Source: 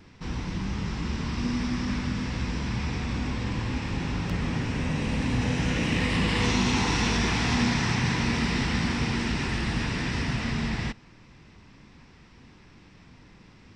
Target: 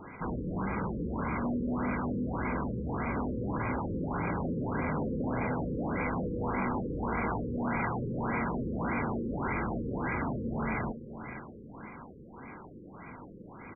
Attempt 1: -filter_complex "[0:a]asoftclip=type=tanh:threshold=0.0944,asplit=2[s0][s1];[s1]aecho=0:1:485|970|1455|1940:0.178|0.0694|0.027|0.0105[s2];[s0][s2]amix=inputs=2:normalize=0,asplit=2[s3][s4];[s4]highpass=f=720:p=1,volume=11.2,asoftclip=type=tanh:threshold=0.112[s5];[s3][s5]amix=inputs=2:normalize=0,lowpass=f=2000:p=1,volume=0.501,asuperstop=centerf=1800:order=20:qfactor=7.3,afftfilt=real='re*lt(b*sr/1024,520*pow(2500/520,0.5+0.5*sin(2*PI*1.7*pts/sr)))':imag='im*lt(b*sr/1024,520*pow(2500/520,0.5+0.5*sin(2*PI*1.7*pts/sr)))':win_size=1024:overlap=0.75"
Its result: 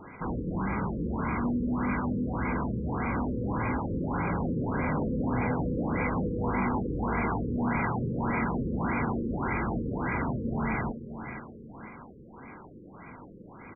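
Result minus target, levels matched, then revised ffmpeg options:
saturation: distortion -9 dB
-filter_complex "[0:a]asoftclip=type=tanh:threshold=0.0282,asplit=2[s0][s1];[s1]aecho=0:1:485|970|1455|1940:0.178|0.0694|0.027|0.0105[s2];[s0][s2]amix=inputs=2:normalize=0,asplit=2[s3][s4];[s4]highpass=f=720:p=1,volume=11.2,asoftclip=type=tanh:threshold=0.112[s5];[s3][s5]amix=inputs=2:normalize=0,lowpass=f=2000:p=1,volume=0.501,asuperstop=centerf=1800:order=20:qfactor=7.3,afftfilt=real='re*lt(b*sr/1024,520*pow(2500/520,0.5+0.5*sin(2*PI*1.7*pts/sr)))':imag='im*lt(b*sr/1024,520*pow(2500/520,0.5+0.5*sin(2*PI*1.7*pts/sr)))':win_size=1024:overlap=0.75"

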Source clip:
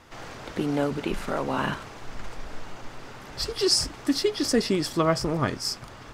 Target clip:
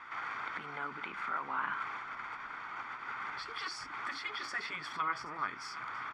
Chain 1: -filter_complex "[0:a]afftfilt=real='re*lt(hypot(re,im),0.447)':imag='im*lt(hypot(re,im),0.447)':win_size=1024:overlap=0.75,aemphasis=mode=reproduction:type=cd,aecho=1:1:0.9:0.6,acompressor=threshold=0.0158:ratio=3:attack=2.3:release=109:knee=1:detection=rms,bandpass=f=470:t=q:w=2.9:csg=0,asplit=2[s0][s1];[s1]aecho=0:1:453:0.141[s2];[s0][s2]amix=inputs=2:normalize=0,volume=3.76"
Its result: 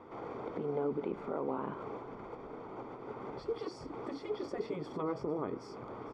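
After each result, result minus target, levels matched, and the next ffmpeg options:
500 Hz band +18.0 dB; echo 324 ms early
-filter_complex "[0:a]afftfilt=real='re*lt(hypot(re,im),0.447)':imag='im*lt(hypot(re,im),0.447)':win_size=1024:overlap=0.75,aemphasis=mode=reproduction:type=cd,aecho=1:1:0.9:0.6,acompressor=threshold=0.0158:ratio=3:attack=2.3:release=109:knee=1:detection=rms,bandpass=f=1600:t=q:w=2.9:csg=0,asplit=2[s0][s1];[s1]aecho=0:1:453:0.141[s2];[s0][s2]amix=inputs=2:normalize=0,volume=3.76"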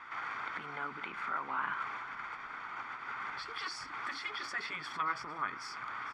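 echo 324 ms early
-filter_complex "[0:a]afftfilt=real='re*lt(hypot(re,im),0.447)':imag='im*lt(hypot(re,im),0.447)':win_size=1024:overlap=0.75,aemphasis=mode=reproduction:type=cd,aecho=1:1:0.9:0.6,acompressor=threshold=0.0158:ratio=3:attack=2.3:release=109:knee=1:detection=rms,bandpass=f=1600:t=q:w=2.9:csg=0,asplit=2[s0][s1];[s1]aecho=0:1:777:0.141[s2];[s0][s2]amix=inputs=2:normalize=0,volume=3.76"

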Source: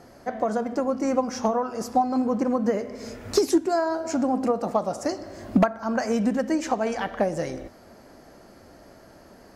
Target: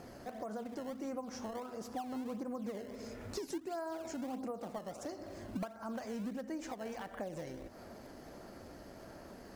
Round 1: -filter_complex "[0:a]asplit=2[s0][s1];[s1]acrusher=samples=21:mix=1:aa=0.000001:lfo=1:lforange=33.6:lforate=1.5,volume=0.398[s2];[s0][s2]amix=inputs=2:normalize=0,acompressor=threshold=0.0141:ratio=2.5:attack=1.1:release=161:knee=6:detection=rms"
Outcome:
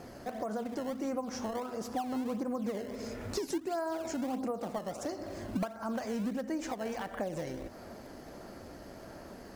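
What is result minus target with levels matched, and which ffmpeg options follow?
compression: peak gain reduction -6 dB
-filter_complex "[0:a]asplit=2[s0][s1];[s1]acrusher=samples=21:mix=1:aa=0.000001:lfo=1:lforange=33.6:lforate=1.5,volume=0.398[s2];[s0][s2]amix=inputs=2:normalize=0,acompressor=threshold=0.00447:ratio=2.5:attack=1.1:release=161:knee=6:detection=rms"

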